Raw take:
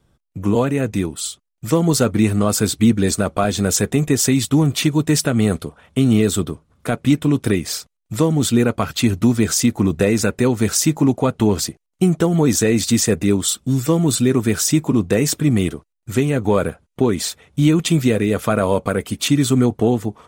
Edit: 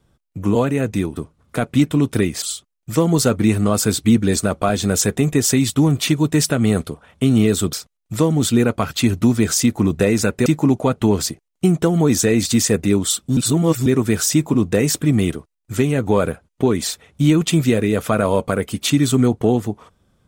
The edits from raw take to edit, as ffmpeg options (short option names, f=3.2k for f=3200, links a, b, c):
-filter_complex "[0:a]asplit=7[a][b][c][d][e][f][g];[a]atrim=end=1.172[h];[b]atrim=start=6.478:end=7.732[i];[c]atrim=start=1.168:end=6.482[j];[d]atrim=start=7.728:end=10.462[k];[e]atrim=start=10.838:end=13.752[l];[f]atrim=start=13.748:end=14.242,asetpts=PTS-STARTPTS,areverse[m];[g]atrim=start=14.238[n];[h][i]acrossfade=d=0.004:c1=hsin:c2=hsin[o];[o][j]acrossfade=d=0.004:c1=hsin:c2=hsin[p];[p][k]acrossfade=d=0.004:c1=hsin:c2=hsin[q];[q][l]acrossfade=d=0.004:c1=hsin:c2=hsin[r];[r][m]acrossfade=d=0.004:c1=hsin:c2=hsin[s];[s][n]acrossfade=d=0.004:c1=hsin:c2=hsin"